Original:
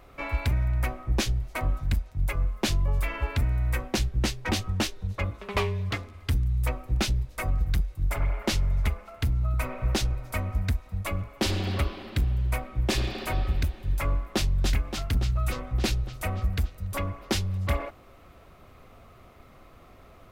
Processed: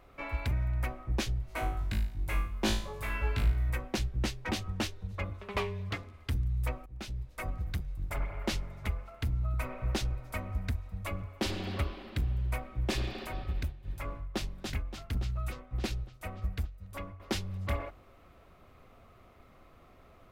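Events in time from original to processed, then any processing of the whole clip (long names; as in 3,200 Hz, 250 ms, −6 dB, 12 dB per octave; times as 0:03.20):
0:01.46–0:03.70: flutter between parallel walls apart 3.2 metres, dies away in 0.46 s
0:06.86–0:07.48: fade in, from −21.5 dB
0:13.27–0:17.20: expander for the loud parts, over −44 dBFS
whole clip: bass and treble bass 0 dB, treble −3 dB; hum removal 46.16 Hz, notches 3; level −5.5 dB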